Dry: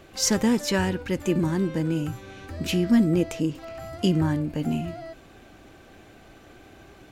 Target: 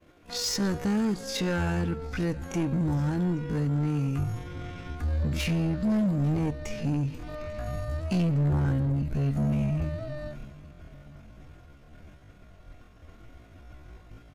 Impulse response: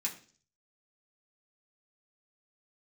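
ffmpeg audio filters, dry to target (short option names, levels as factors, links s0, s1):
-filter_complex "[0:a]agate=range=0.0224:threshold=0.00708:ratio=3:detection=peak,asplit=2[s0][s1];[s1]acompressor=threshold=0.0398:ratio=16,volume=1.26[s2];[s0][s2]amix=inputs=2:normalize=0,asubboost=boost=4.5:cutoff=140,asetrate=40517,aresample=44100,aecho=1:1:453|906|1359:0.0708|0.0319|0.0143,volume=7.08,asoftclip=hard,volume=0.141,highshelf=f=2300:g=-4.5,asplit=2[s3][s4];[1:a]atrim=start_sample=2205,asetrate=26901,aresample=44100[s5];[s4][s5]afir=irnorm=-1:irlink=0,volume=0.0944[s6];[s3][s6]amix=inputs=2:normalize=0,atempo=0.54,volume=0.531"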